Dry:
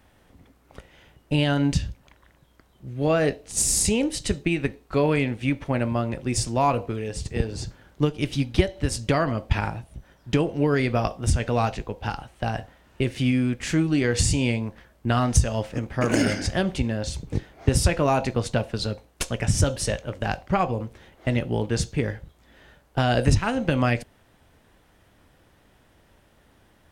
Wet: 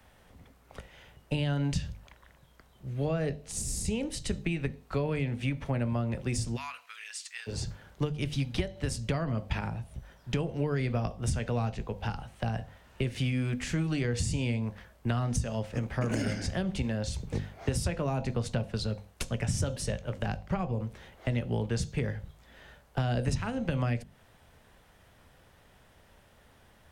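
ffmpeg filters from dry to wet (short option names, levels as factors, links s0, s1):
-filter_complex "[0:a]asplit=3[s0][s1][s2];[s0]afade=t=out:st=6.55:d=0.02[s3];[s1]highpass=f=1400:w=0.5412,highpass=f=1400:w=1.3066,afade=t=in:st=6.55:d=0.02,afade=t=out:st=7.46:d=0.02[s4];[s2]afade=t=in:st=7.46:d=0.02[s5];[s3][s4][s5]amix=inputs=3:normalize=0,equalizer=f=310:w=2.7:g=-7.5,bandreject=f=50:t=h:w=6,bandreject=f=100:t=h:w=6,bandreject=f=150:t=h:w=6,bandreject=f=200:t=h:w=6,bandreject=f=250:t=h:w=6,acrossover=split=140|370[s6][s7][s8];[s6]acompressor=threshold=0.0224:ratio=4[s9];[s7]acompressor=threshold=0.0251:ratio=4[s10];[s8]acompressor=threshold=0.0141:ratio=4[s11];[s9][s10][s11]amix=inputs=3:normalize=0"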